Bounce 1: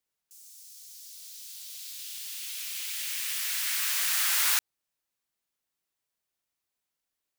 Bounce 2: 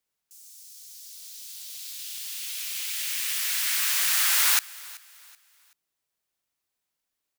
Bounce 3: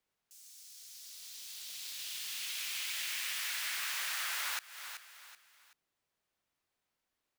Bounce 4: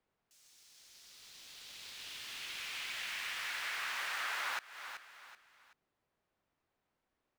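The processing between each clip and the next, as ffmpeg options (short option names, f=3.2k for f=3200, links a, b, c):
-filter_complex "[0:a]asplit=2[a][b];[b]aeval=exprs='sgn(val(0))*max(abs(val(0))-0.0075,0)':c=same,volume=-11.5dB[c];[a][c]amix=inputs=2:normalize=0,aecho=1:1:380|760|1140:0.0891|0.0303|0.0103,volume=2dB"
-af "highshelf=f=4.6k:g=-11.5,acompressor=threshold=-37dB:ratio=8,volume=3dB"
-af "lowpass=f=1.1k:p=1,volume=7dB"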